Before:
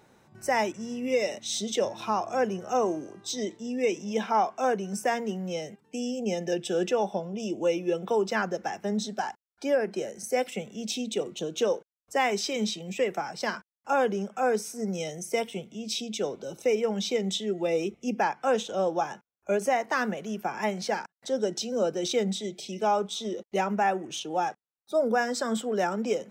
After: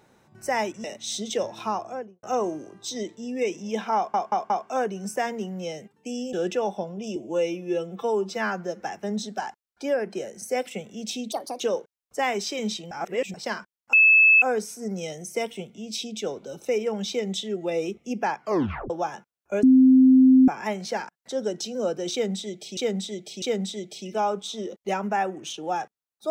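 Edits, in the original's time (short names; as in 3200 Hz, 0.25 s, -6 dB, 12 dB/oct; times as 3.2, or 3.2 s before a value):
0.84–1.26 cut
2.1–2.65 studio fade out
4.38 stutter 0.18 s, 4 plays
6.21–6.69 cut
7.52–8.62 stretch 1.5×
11.13–11.57 speed 157%
12.88–13.31 reverse
13.9–14.39 bleep 2610 Hz -12 dBFS
18.38 tape stop 0.49 s
19.6–20.45 bleep 260 Hz -11 dBFS
22.09–22.74 loop, 3 plays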